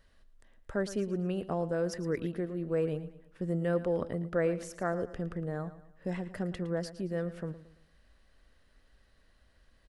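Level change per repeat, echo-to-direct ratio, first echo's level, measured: -8.0 dB, -14.0 dB, -14.5 dB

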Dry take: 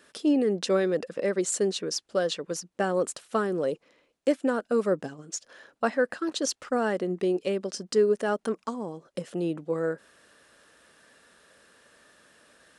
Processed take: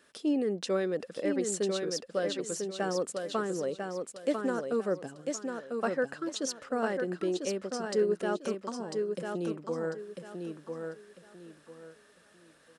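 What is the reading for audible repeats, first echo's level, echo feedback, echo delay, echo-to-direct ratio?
3, -5.0 dB, 28%, 0.997 s, -4.5 dB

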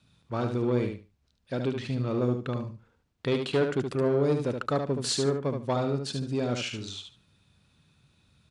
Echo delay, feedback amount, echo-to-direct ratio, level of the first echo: 73 ms, 19%, -6.0 dB, -6.0 dB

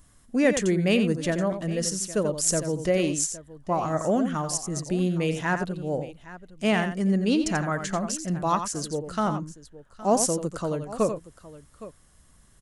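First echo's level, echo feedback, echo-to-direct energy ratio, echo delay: -9.0 dB, no steady repeat, -8.5 dB, 88 ms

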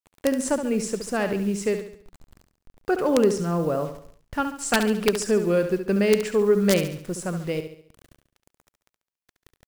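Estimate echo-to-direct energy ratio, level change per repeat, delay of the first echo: -8.0 dB, -7.0 dB, 70 ms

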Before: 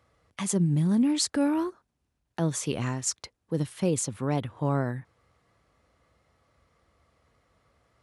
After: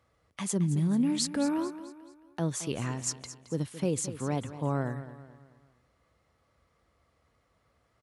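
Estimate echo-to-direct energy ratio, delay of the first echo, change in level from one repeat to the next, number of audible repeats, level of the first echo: -12.5 dB, 0.219 s, -7.5 dB, 3, -13.5 dB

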